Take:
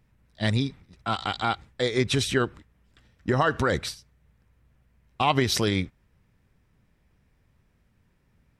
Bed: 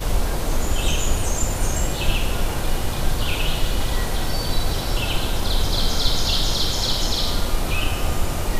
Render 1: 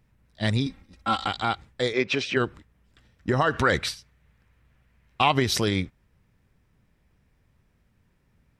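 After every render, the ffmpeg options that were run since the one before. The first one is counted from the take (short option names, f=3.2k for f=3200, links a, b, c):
-filter_complex "[0:a]asettb=1/sr,asplit=3[a][b][c];[a]atrim=end=0.664[d];[b]atrim=start=0.66:end=1.28,asetpts=PTS-STARTPTS,afade=t=in:d=0.004:c=qsin,afade=t=out:st=0.616:d=0.004:c=qsin,aecho=1:1:3.7:0.81,atrim=end_sample=27342[e];[c]atrim=start=1.276[f];[d][e]acrossfade=d=0.004:c1=hsin:c2=qsin[g];[g][f]acrossfade=d=0.004:c1=qsin:c2=hsin,asplit=3[h][i][j];[h]afade=t=out:st=1.92:d=0.02[k];[i]highpass=250,equalizer=f=550:t=q:w=4:g=5,equalizer=f=2.5k:t=q:w=4:g=8,equalizer=f=3.8k:t=q:w=4:g=-6,lowpass=f=5.2k:w=0.5412,lowpass=f=5.2k:w=1.3066,afade=t=in:st=1.92:d=0.02,afade=t=out:st=2.35:d=0.02[l];[j]afade=t=in:st=2.35:d=0.02[m];[k][l][m]amix=inputs=3:normalize=0,asettb=1/sr,asplit=3[n][o][p];[n]atrim=end=3.534[q];[o]atrim=start=3.53:end=5.28,asetpts=PTS-STARTPTS,afade=t=in:d=0.004:c=qsin,afade=t=out:st=1.746:d=0.004:c=qsin,equalizer=f=2.2k:t=o:w=2.2:g=6.5[r];[p]atrim=start=5.276[s];[q][r]acrossfade=d=0.004:c1=hsin:c2=qsin[t];[t][s]acrossfade=d=0.004:c1=qsin:c2=hsin"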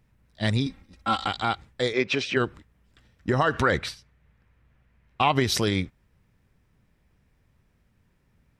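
-filter_complex "[0:a]asettb=1/sr,asplit=3[a][b][c];[a]atrim=end=3.654[d];[b]atrim=start=3.65:end=5.36,asetpts=PTS-STARTPTS,afade=t=in:d=0.004:c=qsin,afade=t=out:st=1.706:d=0.004:c=qsin,highshelf=f=3.4k:g=-7.5[e];[c]atrim=start=5.356[f];[d][e]acrossfade=d=0.004:c1=hsin:c2=qsin[g];[g][f]acrossfade=d=0.004:c1=qsin:c2=hsin"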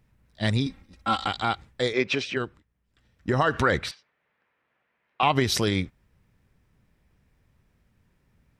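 -filter_complex "[0:a]asettb=1/sr,asplit=3[a][b][c];[a]atrim=end=3.914[d];[b]atrim=start=3.91:end=5.23,asetpts=PTS-STARTPTS,afade=t=in:d=0.004:c=qsin,afade=t=out:st=1.316:d=0.004:c=qsin,highpass=460,lowpass=3.6k[e];[c]atrim=start=5.226[f];[d][e]acrossfade=d=0.004:c1=hsin:c2=qsin[g];[g][f]acrossfade=d=0.004:c1=qsin:c2=hsin,asplit=3[h][i][j];[h]atrim=end=2.61,asetpts=PTS-STARTPTS,afade=t=out:st=2.11:d=0.5:silence=0.251189[k];[i]atrim=start=2.61:end=2.87,asetpts=PTS-STARTPTS,volume=-12dB[l];[j]atrim=start=2.87,asetpts=PTS-STARTPTS,afade=t=in:d=0.5:silence=0.251189[m];[k][l][m]concat=n=3:v=0:a=1"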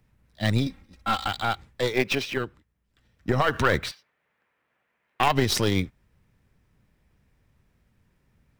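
-filter_complex "[0:a]acrossover=split=130|2000[a][b][c];[c]acrusher=bits=3:mode=log:mix=0:aa=0.000001[d];[a][b][d]amix=inputs=3:normalize=0,aeval=exprs='0.447*(cos(1*acos(clip(val(0)/0.447,-1,1)))-cos(1*PI/2))+0.0794*(cos(4*acos(clip(val(0)/0.447,-1,1)))-cos(4*PI/2))':c=same"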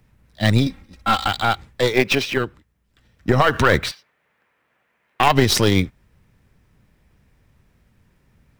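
-af "volume=7dB,alimiter=limit=-1dB:level=0:latency=1"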